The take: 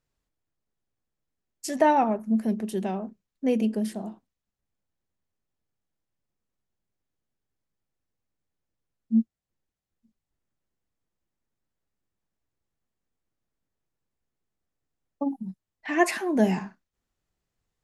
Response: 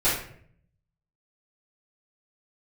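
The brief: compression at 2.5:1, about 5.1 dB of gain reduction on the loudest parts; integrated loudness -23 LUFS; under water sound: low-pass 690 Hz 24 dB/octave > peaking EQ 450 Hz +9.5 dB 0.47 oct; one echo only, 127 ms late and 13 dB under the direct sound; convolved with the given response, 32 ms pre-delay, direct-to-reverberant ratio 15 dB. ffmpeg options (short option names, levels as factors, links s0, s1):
-filter_complex "[0:a]acompressor=threshold=0.0708:ratio=2.5,aecho=1:1:127:0.224,asplit=2[s0][s1];[1:a]atrim=start_sample=2205,adelay=32[s2];[s1][s2]afir=irnorm=-1:irlink=0,volume=0.0355[s3];[s0][s3]amix=inputs=2:normalize=0,lowpass=f=690:w=0.5412,lowpass=f=690:w=1.3066,equalizer=f=450:t=o:w=0.47:g=9.5,volume=1.78"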